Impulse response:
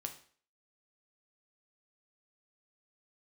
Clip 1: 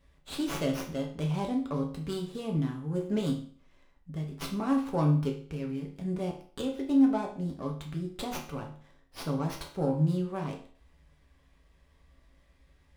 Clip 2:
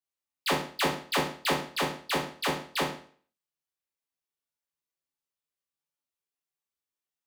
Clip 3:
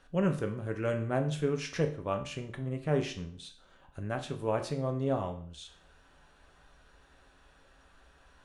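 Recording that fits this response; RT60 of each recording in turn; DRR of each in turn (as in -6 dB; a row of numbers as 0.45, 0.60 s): 3; 0.50, 0.50, 0.50 s; 0.0, -5.5, 4.0 dB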